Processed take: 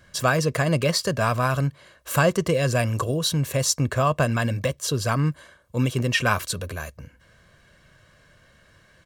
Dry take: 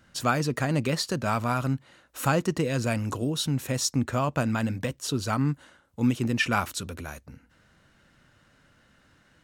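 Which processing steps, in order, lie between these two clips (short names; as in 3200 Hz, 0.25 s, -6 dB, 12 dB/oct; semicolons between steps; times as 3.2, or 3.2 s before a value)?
comb 1.9 ms, depth 56%; speed mistake 24 fps film run at 25 fps; gain +4 dB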